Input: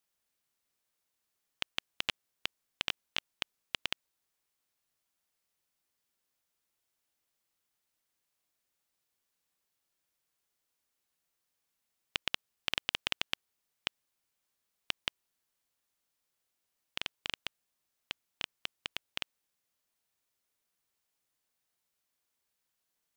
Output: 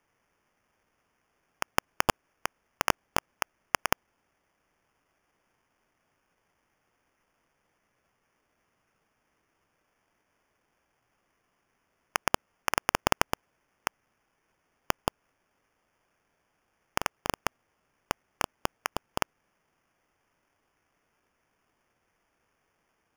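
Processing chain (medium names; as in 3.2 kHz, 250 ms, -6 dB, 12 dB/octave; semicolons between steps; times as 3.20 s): sample-and-hold 11×; trim +8 dB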